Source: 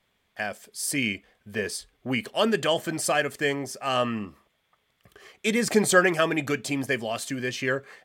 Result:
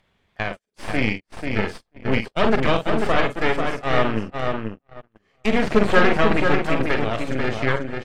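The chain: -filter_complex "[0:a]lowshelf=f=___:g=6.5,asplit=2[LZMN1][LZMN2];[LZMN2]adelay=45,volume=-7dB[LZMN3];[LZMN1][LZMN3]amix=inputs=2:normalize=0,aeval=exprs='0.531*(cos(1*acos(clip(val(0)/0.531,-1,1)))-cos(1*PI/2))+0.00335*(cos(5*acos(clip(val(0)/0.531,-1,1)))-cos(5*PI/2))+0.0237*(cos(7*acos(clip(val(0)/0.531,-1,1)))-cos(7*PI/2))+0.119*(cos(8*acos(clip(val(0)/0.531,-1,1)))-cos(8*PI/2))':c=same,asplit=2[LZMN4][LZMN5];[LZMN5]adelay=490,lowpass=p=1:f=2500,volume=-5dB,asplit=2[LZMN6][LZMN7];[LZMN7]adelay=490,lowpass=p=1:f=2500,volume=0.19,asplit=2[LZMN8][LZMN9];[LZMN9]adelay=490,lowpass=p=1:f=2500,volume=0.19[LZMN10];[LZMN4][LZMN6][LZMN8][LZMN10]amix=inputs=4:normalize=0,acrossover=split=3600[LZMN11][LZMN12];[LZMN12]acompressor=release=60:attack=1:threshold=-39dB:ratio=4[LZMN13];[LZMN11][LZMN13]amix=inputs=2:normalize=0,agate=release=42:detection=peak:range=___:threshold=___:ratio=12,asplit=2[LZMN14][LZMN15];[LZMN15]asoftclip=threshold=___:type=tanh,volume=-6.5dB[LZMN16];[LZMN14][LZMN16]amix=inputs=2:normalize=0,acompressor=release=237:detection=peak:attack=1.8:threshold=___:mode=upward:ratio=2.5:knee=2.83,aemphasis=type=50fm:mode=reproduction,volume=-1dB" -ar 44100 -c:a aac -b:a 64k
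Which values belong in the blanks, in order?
160, -34dB, -41dB, -14dB, -32dB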